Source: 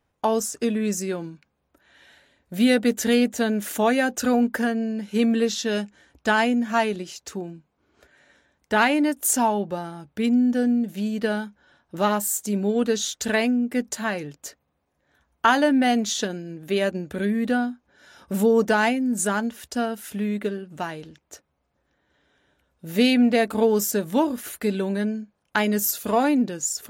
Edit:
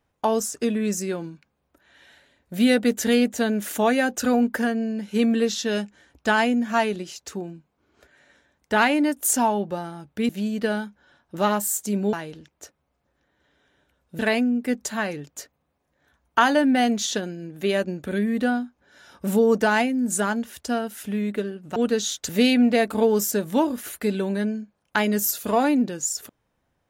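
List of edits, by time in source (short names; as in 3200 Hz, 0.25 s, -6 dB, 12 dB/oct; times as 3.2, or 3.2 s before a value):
10.29–10.89 cut
12.73–13.26 swap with 20.83–22.89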